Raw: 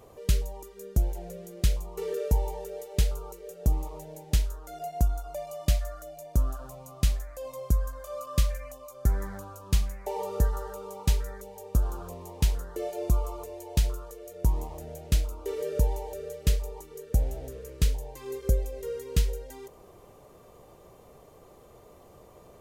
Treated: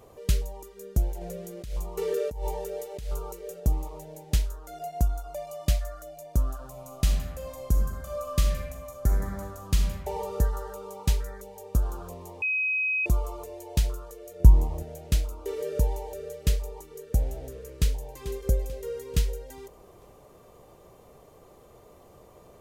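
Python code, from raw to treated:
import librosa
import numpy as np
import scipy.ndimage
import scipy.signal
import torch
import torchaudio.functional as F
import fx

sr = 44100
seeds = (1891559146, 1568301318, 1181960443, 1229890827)

y = fx.over_compress(x, sr, threshold_db=-30.0, ratio=-1.0, at=(1.21, 3.6))
y = fx.reverb_throw(y, sr, start_s=6.7, length_s=3.21, rt60_s=1.1, drr_db=2.5)
y = fx.low_shelf(y, sr, hz=280.0, db=11.0, at=(14.4, 14.83))
y = fx.echo_throw(y, sr, start_s=17.57, length_s=0.64, ms=440, feedback_pct=50, wet_db=-13.0)
y = fx.edit(y, sr, fx.bleep(start_s=12.42, length_s=0.64, hz=2530.0, db=-23.5), tone=tone)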